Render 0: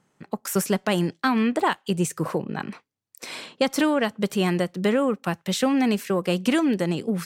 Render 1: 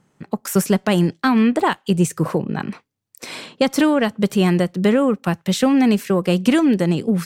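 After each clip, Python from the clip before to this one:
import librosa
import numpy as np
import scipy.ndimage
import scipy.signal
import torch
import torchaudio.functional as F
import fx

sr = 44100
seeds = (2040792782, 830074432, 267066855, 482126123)

y = fx.low_shelf(x, sr, hz=260.0, db=7.0)
y = y * librosa.db_to_amplitude(3.0)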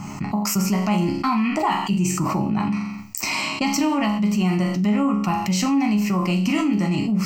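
y = fx.fixed_phaser(x, sr, hz=2400.0, stages=8)
y = fx.resonator_bank(y, sr, root=37, chord='sus4', decay_s=0.4)
y = fx.env_flatten(y, sr, amount_pct=70)
y = y * librosa.db_to_amplitude(6.5)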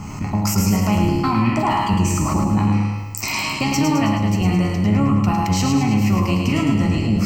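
y = fx.octave_divider(x, sr, octaves=1, level_db=-2.0)
y = fx.echo_feedback(y, sr, ms=107, feedback_pct=54, wet_db=-4.5)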